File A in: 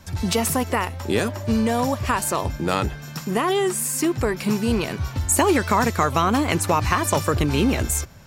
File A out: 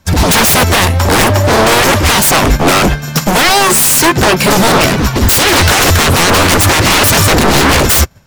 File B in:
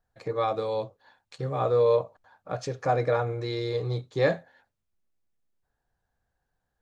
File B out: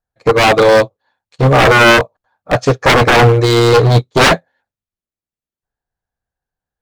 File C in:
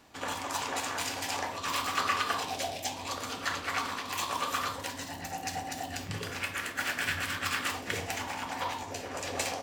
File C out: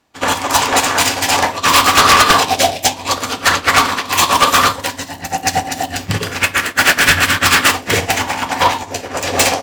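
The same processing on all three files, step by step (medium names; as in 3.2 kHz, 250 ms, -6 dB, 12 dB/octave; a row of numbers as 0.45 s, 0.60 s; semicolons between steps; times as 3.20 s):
Chebyshev shaper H 5 -13 dB, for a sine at -4 dBFS; wavefolder -20 dBFS; upward expansion 2.5:1, over -44 dBFS; peak normalisation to -1.5 dBFS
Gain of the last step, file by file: +18.5 dB, +18.5 dB, +18.5 dB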